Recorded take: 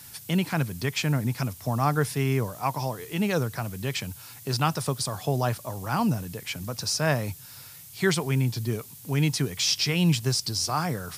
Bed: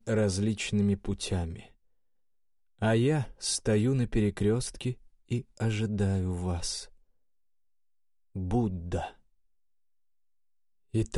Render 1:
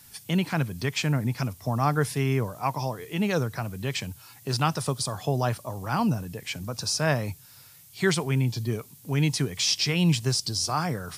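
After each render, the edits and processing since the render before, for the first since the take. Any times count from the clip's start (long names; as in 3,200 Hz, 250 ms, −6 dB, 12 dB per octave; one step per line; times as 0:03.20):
noise reduction from a noise print 6 dB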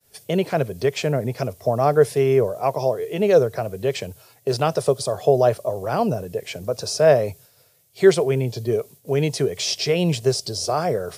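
downward expander −44 dBFS
flat-topped bell 510 Hz +14.5 dB 1.1 octaves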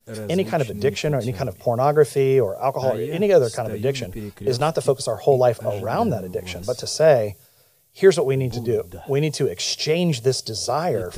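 mix in bed −6 dB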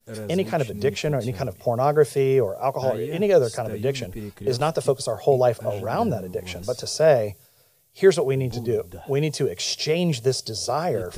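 level −2 dB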